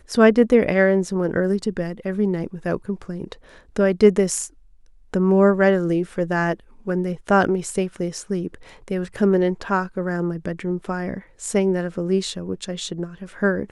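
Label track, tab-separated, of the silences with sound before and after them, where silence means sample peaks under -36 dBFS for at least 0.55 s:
4.470000	5.140000	silence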